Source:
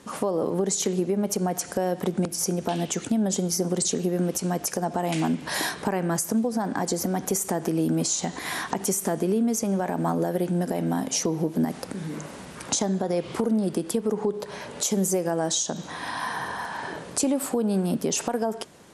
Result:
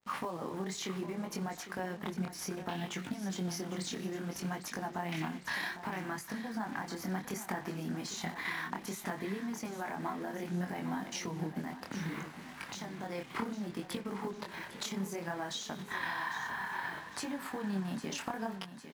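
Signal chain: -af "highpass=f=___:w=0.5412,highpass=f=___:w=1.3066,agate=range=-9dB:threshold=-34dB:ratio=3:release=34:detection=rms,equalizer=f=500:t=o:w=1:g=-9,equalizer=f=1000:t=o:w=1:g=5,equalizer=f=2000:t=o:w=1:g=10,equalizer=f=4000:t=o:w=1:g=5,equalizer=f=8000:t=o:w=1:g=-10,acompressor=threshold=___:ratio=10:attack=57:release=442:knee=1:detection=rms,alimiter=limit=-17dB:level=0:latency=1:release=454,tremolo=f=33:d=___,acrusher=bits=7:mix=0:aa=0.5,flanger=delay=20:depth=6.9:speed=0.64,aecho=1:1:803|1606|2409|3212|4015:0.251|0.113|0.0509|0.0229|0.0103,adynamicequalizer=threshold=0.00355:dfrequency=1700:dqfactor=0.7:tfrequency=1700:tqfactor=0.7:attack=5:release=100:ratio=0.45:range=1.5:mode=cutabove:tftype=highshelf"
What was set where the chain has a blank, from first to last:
41, 41, -30dB, 0.333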